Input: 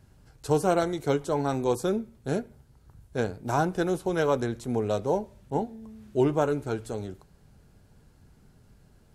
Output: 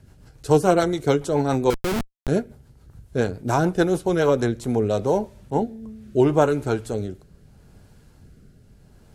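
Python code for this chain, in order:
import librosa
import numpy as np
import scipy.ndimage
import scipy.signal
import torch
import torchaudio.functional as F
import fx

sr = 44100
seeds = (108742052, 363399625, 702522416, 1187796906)

y = fx.rotary_switch(x, sr, hz=7.0, then_hz=0.75, switch_at_s=4.11)
y = fx.schmitt(y, sr, flips_db=-29.5, at=(1.7, 2.28))
y = y * librosa.db_to_amplitude(8.0)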